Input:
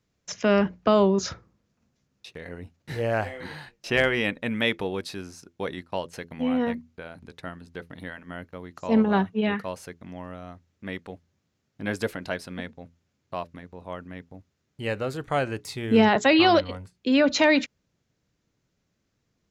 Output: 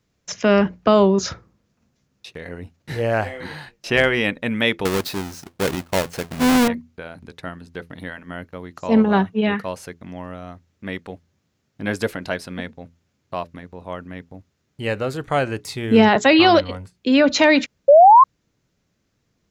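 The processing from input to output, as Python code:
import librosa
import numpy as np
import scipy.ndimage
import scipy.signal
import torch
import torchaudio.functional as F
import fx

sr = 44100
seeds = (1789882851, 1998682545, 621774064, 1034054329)

y = fx.halfwave_hold(x, sr, at=(4.85, 6.68))
y = fx.spec_paint(y, sr, seeds[0], shape='rise', start_s=17.88, length_s=0.36, low_hz=540.0, high_hz=1100.0, level_db=-13.0)
y = y * librosa.db_to_amplitude(5.0)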